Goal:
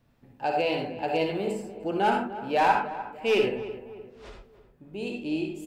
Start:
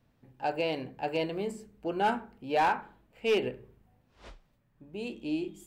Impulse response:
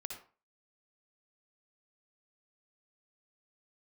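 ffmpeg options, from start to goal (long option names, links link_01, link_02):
-filter_complex "[0:a]asplit=2[link_01][link_02];[link_02]adelay=301,lowpass=frequency=1600:poles=1,volume=-13dB,asplit=2[link_03][link_04];[link_04]adelay=301,lowpass=frequency=1600:poles=1,volume=0.45,asplit=2[link_05][link_06];[link_06]adelay=301,lowpass=frequency=1600:poles=1,volume=0.45,asplit=2[link_07][link_08];[link_08]adelay=301,lowpass=frequency=1600:poles=1,volume=0.45[link_09];[link_01][link_03][link_05][link_07][link_09]amix=inputs=5:normalize=0[link_10];[1:a]atrim=start_sample=2205,atrim=end_sample=6615[link_11];[link_10][link_11]afir=irnorm=-1:irlink=0,volume=6.5dB"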